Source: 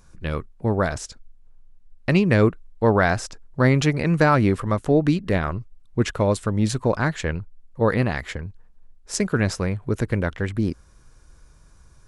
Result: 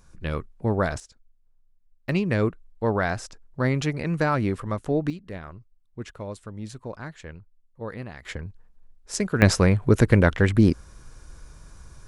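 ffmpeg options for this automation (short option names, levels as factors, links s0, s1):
-af "asetnsamples=n=441:p=0,asendcmd='1 volume volume -13.5dB;2.09 volume volume -6dB;5.1 volume volume -15dB;8.25 volume volume -3dB;9.42 volume volume 6dB',volume=0.794"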